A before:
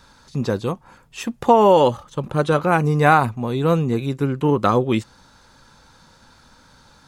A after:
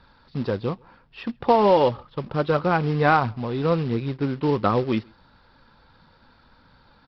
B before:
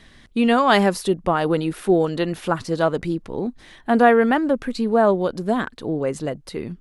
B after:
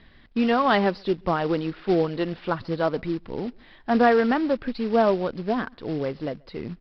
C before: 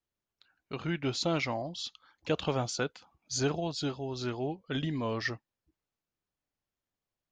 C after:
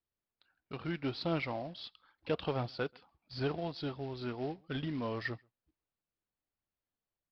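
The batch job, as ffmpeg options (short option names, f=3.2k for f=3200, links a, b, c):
-filter_complex "[0:a]aresample=11025,acrusher=bits=4:mode=log:mix=0:aa=0.000001,aresample=44100,lowpass=f=3.2k:p=1,asplit=2[a][b];[b]adelay=134.1,volume=-30dB,highshelf=f=4k:g=-3.02[c];[a][c]amix=inputs=2:normalize=0,aphaser=in_gain=1:out_gain=1:delay=4.6:decay=0.21:speed=1.5:type=triangular,volume=-4dB"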